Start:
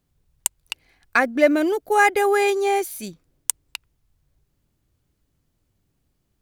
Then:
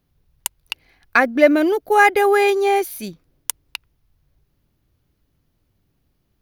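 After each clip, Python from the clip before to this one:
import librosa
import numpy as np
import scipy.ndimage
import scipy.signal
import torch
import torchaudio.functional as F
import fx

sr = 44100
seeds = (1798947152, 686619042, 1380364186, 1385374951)

y = fx.peak_eq(x, sr, hz=7800.0, db=-11.5, octaves=0.47)
y = F.gain(torch.from_numpy(y), 3.5).numpy()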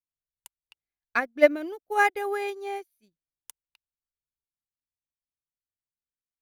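y = fx.upward_expand(x, sr, threshold_db=-33.0, expansion=2.5)
y = F.gain(torch.from_numpy(y), -3.5).numpy()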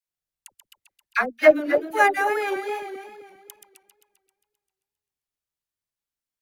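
y = fx.reverse_delay_fb(x, sr, ms=132, feedback_pct=62, wet_db=-7)
y = fx.dispersion(y, sr, late='lows', ms=62.0, hz=710.0)
y = fx.wow_flutter(y, sr, seeds[0], rate_hz=2.1, depth_cents=77.0)
y = F.gain(torch.from_numpy(y), 3.0).numpy()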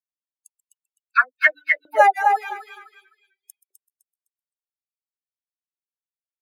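y = fx.bin_expand(x, sr, power=3.0)
y = fx.echo_feedback(y, sr, ms=255, feedback_pct=28, wet_db=-8.5)
y = fx.filter_lfo_highpass(y, sr, shape='saw_up', hz=0.54, low_hz=570.0, high_hz=2200.0, q=5.7)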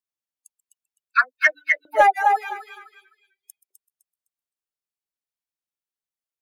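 y = 10.0 ** (-3.5 / 20.0) * np.tanh(x / 10.0 ** (-3.5 / 20.0))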